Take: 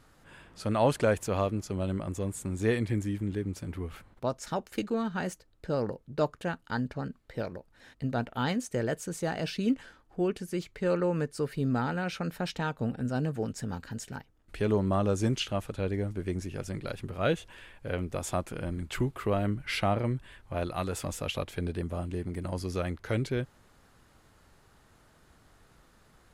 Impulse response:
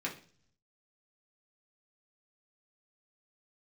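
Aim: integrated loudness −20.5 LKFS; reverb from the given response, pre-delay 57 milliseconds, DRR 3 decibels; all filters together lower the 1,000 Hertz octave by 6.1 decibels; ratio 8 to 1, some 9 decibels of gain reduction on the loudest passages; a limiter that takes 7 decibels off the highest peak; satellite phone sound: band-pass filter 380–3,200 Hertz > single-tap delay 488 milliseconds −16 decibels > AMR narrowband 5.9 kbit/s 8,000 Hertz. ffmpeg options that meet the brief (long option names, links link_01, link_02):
-filter_complex "[0:a]equalizer=frequency=1000:width_type=o:gain=-8.5,acompressor=threshold=-31dB:ratio=8,alimiter=level_in=5dB:limit=-24dB:level=0:latency=1,volume=-5dB,asplit=2[link_01][link_02];[1:a]atrim=start_sample=2205,adelay=57[link_03];[link_02][link_03]afir=irnorm=-1:irlink=0,volume=-6.5dB[link_04];[link_01][link_04]amix=inputs=2:normalize=0,highpass=380,lowpass=3200,aecho=1:1:488:0.158,volume=25dB" -ar 8000 -c:a libopencore_amrnb -b:a 5900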